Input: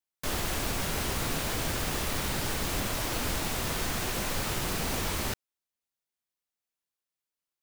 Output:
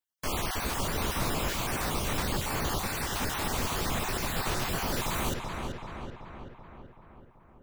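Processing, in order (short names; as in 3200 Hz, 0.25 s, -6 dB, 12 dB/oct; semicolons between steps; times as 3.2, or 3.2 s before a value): random spectral dropouts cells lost 30%; bell 1000 Hz +3.5 dB 0.83 oct; on a send: darkening echo 0.382 s, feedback 63%, low-pass 2900 Hz, level -4 dB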